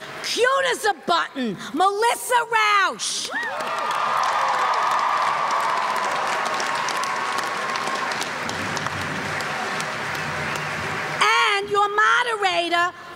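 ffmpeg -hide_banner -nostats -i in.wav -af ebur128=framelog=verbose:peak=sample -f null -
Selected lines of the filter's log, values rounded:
Integrated loudness:
  I:         -21.5 LUFS
  Threshold: -31.5 LUFS
Loudness range:
  LRA:         4.7 LU
  Threshold: -41.9 LUFS
  LRA low:   -25.0 LUFS
  LRA high:  -20.3 LUFS
Sample peak:
  Peak:       -4.9 dBFS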